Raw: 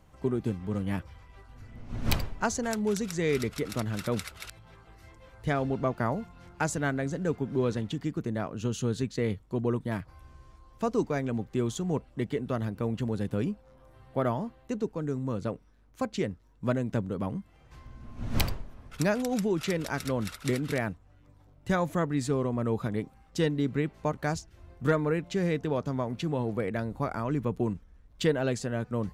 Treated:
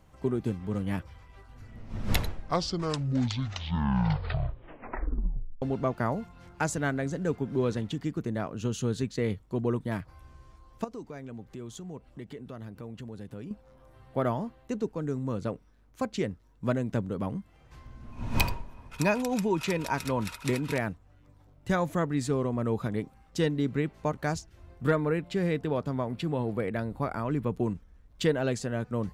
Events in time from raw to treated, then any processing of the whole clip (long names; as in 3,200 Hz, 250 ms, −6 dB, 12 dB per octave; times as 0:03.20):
0:01.66: tape stop 3.96 s
0:10.84–0:13.51: downward compressor 2.5 to 1, threshold −43 dBFS
0:18.12–0:20.78: hollow resonant body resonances 950/2,500 Hz, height 16 dB, ringing for 60 ms
0:24.84–0:27.50: parametric band 6,200 Hz −10 dB 0.29 octaves